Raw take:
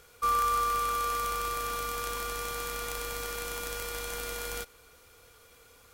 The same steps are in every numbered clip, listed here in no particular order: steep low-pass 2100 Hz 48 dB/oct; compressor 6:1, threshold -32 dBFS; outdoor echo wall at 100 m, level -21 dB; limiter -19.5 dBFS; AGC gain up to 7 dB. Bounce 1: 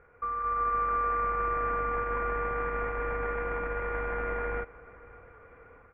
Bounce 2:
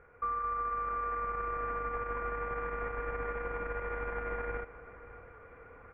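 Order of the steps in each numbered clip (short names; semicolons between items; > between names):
limiter > steep low-pass > compressor > AGC > outdoor echo; outdoor echo > AGC > limiter > steep low-pass > compressor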